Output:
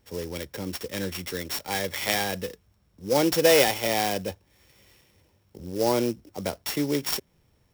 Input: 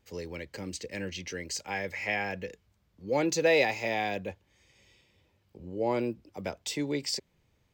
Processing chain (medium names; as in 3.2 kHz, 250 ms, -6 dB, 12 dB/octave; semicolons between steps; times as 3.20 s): sorted samples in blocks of 8 samples; sampling jitter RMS 0.027 ms; trim +5.5 dB